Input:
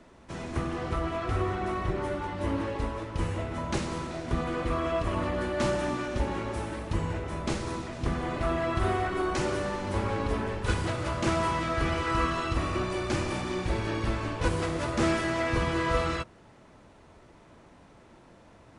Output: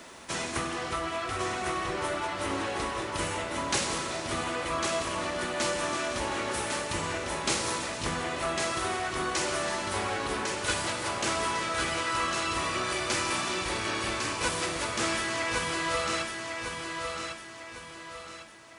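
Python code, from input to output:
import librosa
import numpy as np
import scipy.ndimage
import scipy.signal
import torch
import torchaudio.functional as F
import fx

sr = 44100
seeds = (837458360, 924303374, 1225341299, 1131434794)

p1 = fx.rider(x, sr, range_db=10, speed_s=0.5)
p2 = fx.tilt_eq(p1, sr, slope=3.5)
y = p2 + fx.echo_feedback(p2, sr, ms=1102, feedback_pct=39, wet_db=-5.0, dry=0)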